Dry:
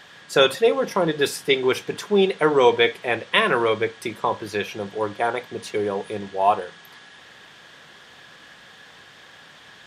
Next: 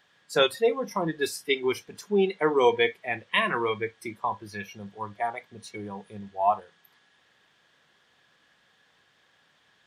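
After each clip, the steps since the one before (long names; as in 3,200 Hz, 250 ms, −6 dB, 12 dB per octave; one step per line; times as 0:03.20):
noise reduction from a noise print of the clip's start 13 dB
level −4.5 dB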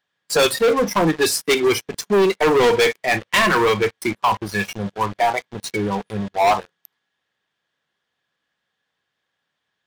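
leveller curve on the samples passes 5
level −3 dB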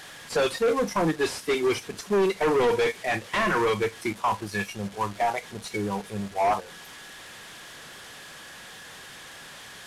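linear delta modulator 64 kbit/s, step −31.5 dBFS
level −6.5 dB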